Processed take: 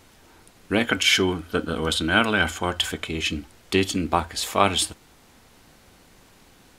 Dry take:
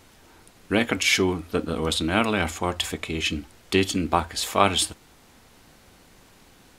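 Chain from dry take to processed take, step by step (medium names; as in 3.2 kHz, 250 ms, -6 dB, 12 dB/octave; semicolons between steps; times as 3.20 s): 0.84–3.07 s: small resonant body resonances 1.5/3.1 kHz, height 12 dB, ringing for 25 ms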